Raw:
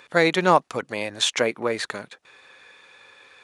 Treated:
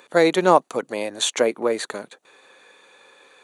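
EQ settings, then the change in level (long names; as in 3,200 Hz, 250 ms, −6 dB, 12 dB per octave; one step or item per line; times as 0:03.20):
high-pass filter 260 Hz 12 dB per octave
parametric band 2,200 Hz −9.5 dB 2.4 octaves
notch filter 5,200 Hz, Q 5.6
+6.0 dB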